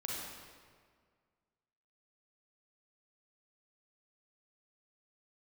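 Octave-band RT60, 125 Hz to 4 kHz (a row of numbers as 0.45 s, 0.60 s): 2.0 s, 1.9 s, 1.9 s, 1.8 s, 1.6 s, 1.3 s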